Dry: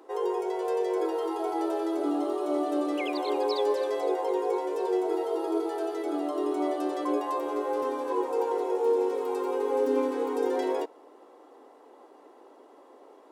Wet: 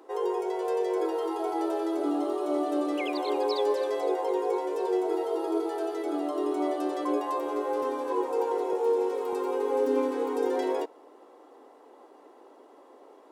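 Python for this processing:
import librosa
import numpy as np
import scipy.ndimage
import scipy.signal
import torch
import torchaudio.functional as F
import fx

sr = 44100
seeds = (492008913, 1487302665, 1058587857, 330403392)

y = fx.highpass(x, sr, hz=290.0, slope=12, at=(8.73, 9.33))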